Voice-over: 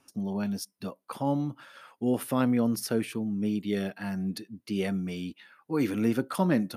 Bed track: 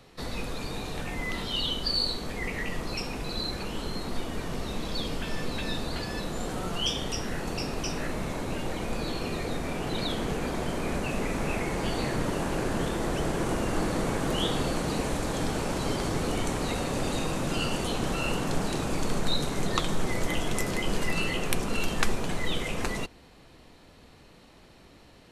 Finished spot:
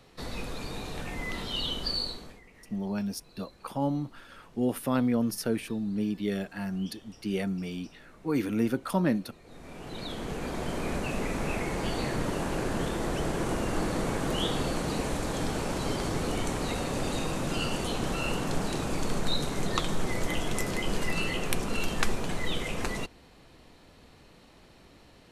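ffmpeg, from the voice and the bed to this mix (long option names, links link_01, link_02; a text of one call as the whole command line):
ffmpeg -i stem1.wav -i stem2.wav -filter_complex "[0:a]adelay=2550,volume=-1dB[link_01];[1:a]volume=19dB,afade=type=out:start_time=1.88:duration=0.54:silence=0.0944061,afade=type=in:start_time=9.43:duration=1.35:silence=0.0841395[link_02];[link_01][link_02]amix=inputs=2:normalize=0" out.wav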